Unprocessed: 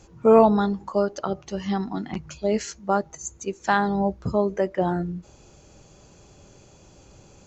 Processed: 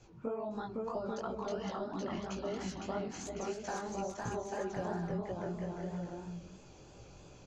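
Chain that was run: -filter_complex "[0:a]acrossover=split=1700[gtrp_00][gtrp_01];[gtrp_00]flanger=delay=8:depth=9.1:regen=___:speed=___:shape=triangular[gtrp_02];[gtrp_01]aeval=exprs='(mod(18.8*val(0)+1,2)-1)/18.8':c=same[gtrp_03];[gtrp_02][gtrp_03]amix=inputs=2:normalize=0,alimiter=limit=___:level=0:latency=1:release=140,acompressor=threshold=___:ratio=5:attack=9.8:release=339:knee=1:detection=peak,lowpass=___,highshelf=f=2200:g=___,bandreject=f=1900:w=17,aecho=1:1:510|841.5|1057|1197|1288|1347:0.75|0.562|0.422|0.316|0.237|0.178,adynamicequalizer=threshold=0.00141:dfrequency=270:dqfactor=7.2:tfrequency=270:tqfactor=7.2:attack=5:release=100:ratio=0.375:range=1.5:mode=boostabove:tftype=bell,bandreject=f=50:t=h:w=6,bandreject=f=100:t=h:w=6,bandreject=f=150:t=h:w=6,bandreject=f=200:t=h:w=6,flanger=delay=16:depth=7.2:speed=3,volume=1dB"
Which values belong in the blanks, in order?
58, 0.49, -15dB, -34dB, 6200, -6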